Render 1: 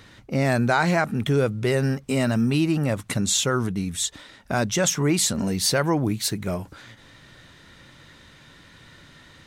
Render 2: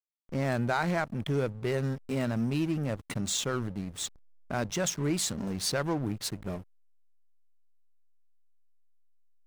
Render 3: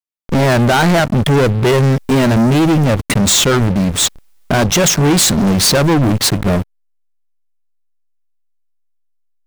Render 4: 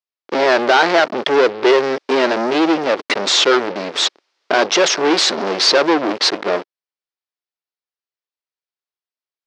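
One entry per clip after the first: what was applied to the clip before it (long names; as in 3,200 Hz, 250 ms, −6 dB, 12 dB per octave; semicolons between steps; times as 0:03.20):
slack as between gear wheels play −25.5 dBFS; level −7.5 dB
leveller curve on the samples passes 5; level +8.5 dB
Chebyshev band-pass filter 360–5,100 Hz, order 3; level +1.5 dB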